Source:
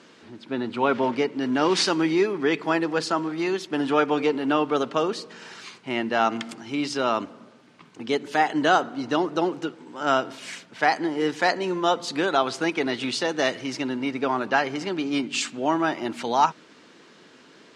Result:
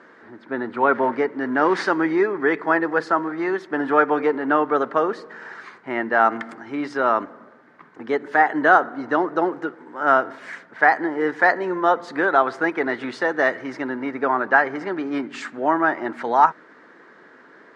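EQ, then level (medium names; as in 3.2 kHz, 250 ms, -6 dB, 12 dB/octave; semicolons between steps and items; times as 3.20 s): tone controls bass -9 dB, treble -12 dB; resonant high shelf 2.2 kHz -6.5 dB, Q 3; +3.5 dB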